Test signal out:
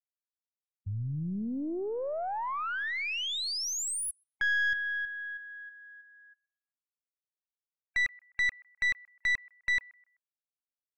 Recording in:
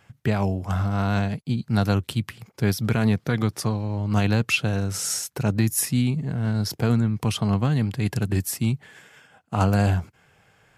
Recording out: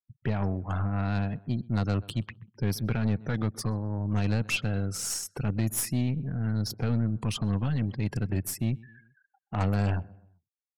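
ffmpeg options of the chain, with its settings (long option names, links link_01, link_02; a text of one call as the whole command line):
ffmpeg -i in.wav -filter_complex "[0:a]afftfilt=real='re*gte(hypot(re,im),0.0158)':imag='im*gte(hypot(re,im),0.0158)':win_size=1024:overlap=0.75,asplit=2[link_01][link_02];[link_02]adelay=128,lowpass=frequency=1700:poles=1,volume=-23dB,asplit=2[link_03][link_04];[link_04]adelay=128,lowpass=frequency=1700:poles=1,volume=0.46,asplit=2[link_05][link_06];[link_06]adelay=128,lowpass=frequency=1700:poles=1,volume=0.46[link_07];[link_01][link_03][link_05][link_07]amix=inputs=4:normalize=0,aeval=exprs='(tanh(7.94*val(0)+0.45)-tanh(0.45))/7.94':channel_layout=same,volume=-3dB" out.wav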